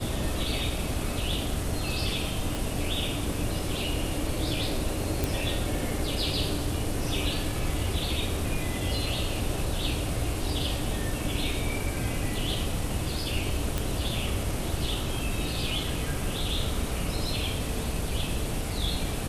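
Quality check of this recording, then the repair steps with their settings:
0:02.55: click
0:05.24: click
0:13.78: click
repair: click removal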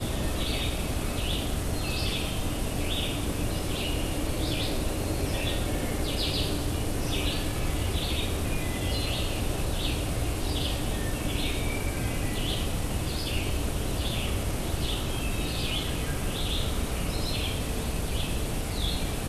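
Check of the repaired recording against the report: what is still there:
0:02.55: click

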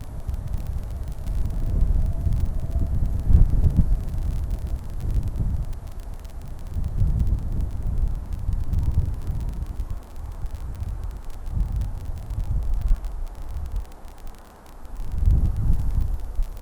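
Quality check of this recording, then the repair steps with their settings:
surface crackle 30 per second −29 dBFS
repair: click removal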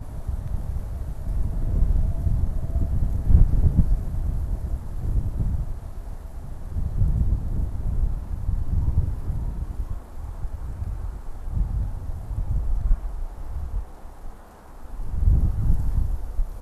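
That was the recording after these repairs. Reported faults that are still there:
none of them is left

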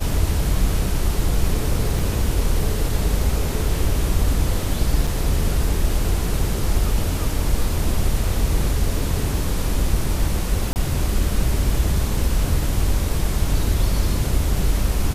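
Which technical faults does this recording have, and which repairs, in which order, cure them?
0:01.99: drop-out 3 ms
0:05.07: drop-out 4.5 ms
0:10.73–0:10.76: drop-out 29 ms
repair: repair the gap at 0:01.99, 3 ms
repair the gap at 0:05.07, 4.5 ms
repair the gap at 0:10.73, 29 ms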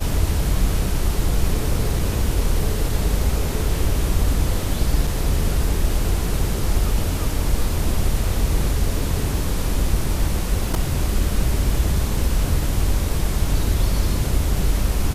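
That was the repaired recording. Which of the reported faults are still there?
none of them is left

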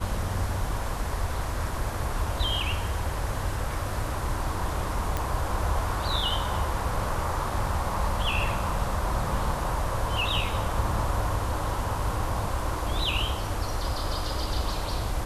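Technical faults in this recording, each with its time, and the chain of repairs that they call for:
0:05.17: click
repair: click removal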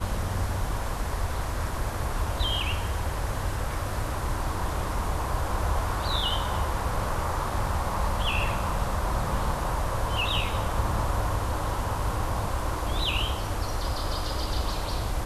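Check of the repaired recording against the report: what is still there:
none of them is left

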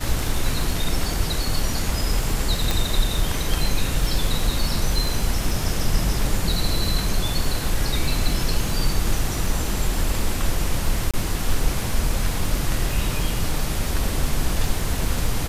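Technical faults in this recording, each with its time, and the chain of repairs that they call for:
surface crackle 28 per second −26 dBFS
0:02.71: click
0:11.11–0:11.14: drop-out 26 ms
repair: click removal
repair the gap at 0:11.11, 26 ms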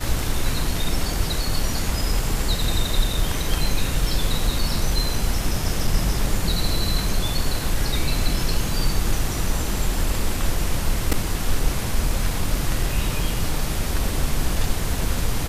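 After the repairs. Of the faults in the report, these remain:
none of them is left

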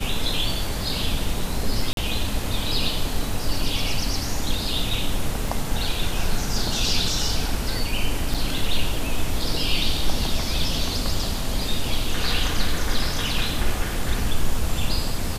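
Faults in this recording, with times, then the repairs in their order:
0:01.93–0:01.97: drop-out 42 ms
0:05.48: drop-out 2.3 ms
0:08.34–0:08.35: drop-out 5.3 ms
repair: repair the gap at 0:01.93, 42 ms
repair the gap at 0:05.48, 2.3 ms
repair the gap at 0:08.34, 5.3 ms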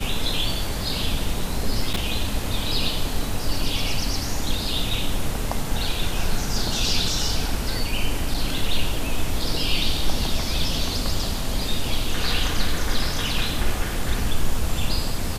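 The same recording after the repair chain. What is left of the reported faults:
none of them is left

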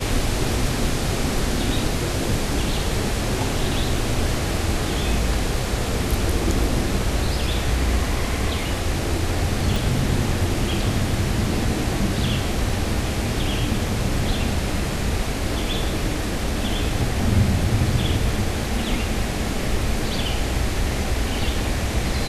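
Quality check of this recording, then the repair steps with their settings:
0:09.76: click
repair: click removal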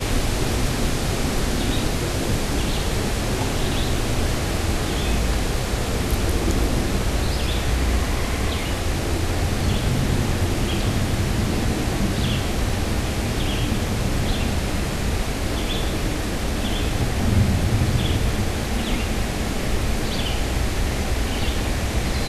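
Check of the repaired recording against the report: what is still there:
0:09.76: click

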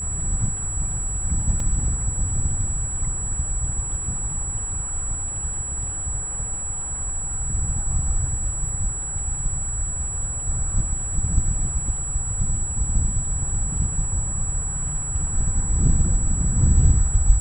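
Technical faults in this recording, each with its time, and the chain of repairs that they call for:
whistle 7,800 Hz −27 dBFS
0:01.60: drop-out 2.6 ms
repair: notch filter 7,800 Hz, Q 30
repair the gap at 0:01.60, 2.6 ms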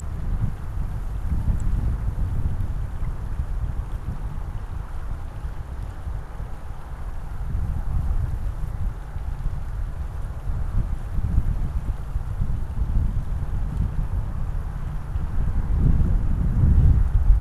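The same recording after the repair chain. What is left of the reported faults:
none of them is left

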